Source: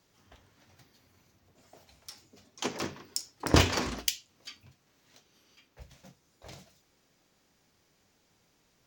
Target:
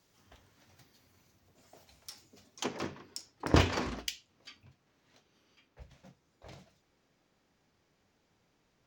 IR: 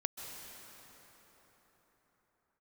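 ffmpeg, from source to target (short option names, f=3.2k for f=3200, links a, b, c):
-af "asetnsamples=n=441:p=0,asendcmd='2.64 equalizer g -12.5',equalizer=f=14k:t=o:w=1.8:g=2,volume=-2dB"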